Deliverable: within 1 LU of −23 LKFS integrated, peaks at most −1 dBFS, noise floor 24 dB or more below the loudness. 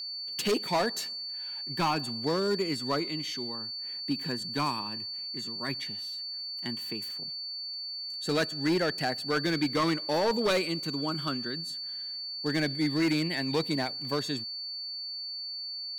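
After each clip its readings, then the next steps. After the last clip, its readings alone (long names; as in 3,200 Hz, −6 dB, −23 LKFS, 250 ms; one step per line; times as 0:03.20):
share of clipped samples 1.6%; peaks flattened at −21.5 dBFS; interfering tone 4,500 Hz; level of the tone −35 dBFS; integrated loudness −30.5 LKFS; sample peak −21.5 dBFS; target loudness −23.0 LKFS
→ clipped peaks rebuilt −21.5 dBFS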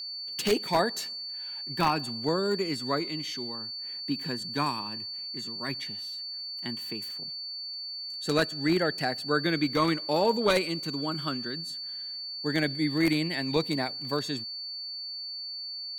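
share of clipped samples 0.0%; interfering tone 4,500 Hz; level of the tone −35 dBFS
→ notch filter 4,500 Hz, Q 30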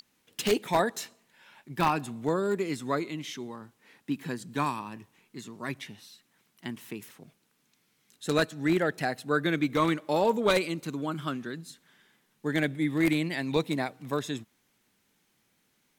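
interfering tone none found; integrated loudness −29.5 LKFS; sample peak −12.0 dBFS; target loudness −23.0 LKFS
→ level +6.5 dB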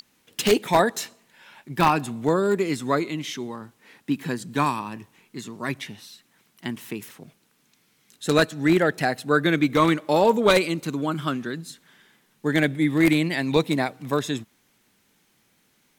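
integrated loudness −23.0 LKFS; sample peak −5.5 dBFS; background noise floor −65 dBFS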